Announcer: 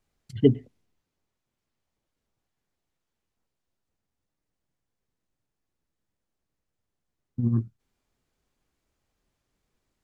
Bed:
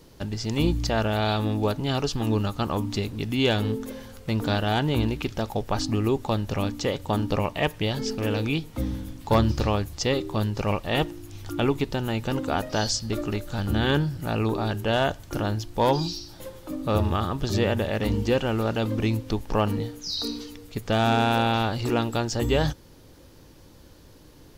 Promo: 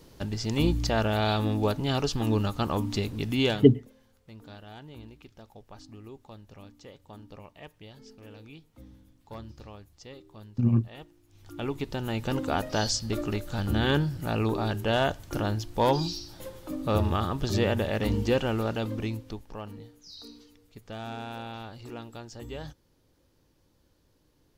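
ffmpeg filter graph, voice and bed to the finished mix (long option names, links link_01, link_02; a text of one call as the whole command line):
ffmpeg -i stem1.wav -i stem2.wav -filter_complex "[0:a]adelay=3200,volume=1.5dB[link_01];[1:a]volume=18.5dB,afade=type=out:start_time=3.41:duration=0.29:silence=0.0944061,afade=type=in:start_time=11.27:duration=1.05:silence=0.1,afade=type=out:start_time=18.42:duration=1.12:silence=0.188365[link_02];[link_01][link_02]amix=inputs=2:normalize=0" out.wav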